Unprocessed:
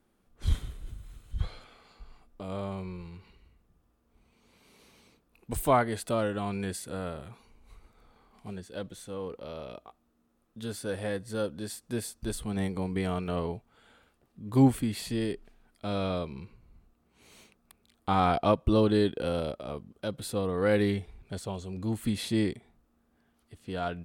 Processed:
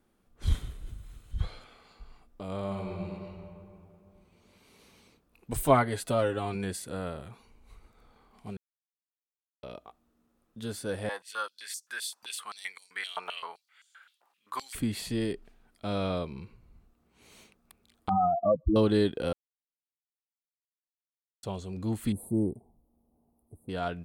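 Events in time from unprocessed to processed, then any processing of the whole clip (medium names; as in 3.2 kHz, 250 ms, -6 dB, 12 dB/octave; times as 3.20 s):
2.59–3.15 s: reverb throw, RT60 2.8 s, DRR 1 dB
5.54–6.55 s: comb 7.4 ms, depth 57%
8.57–9.63 s: mute
11.09–14.75 s: step-sequenced high-pass 7.7 Hz 900–6000 Hz
18.09–18.76 s: spectral contrast enhancement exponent 3.4
19.33–21.43 s: mute
22.12–23.69 s: elliptic band-stop 860–9800 Hz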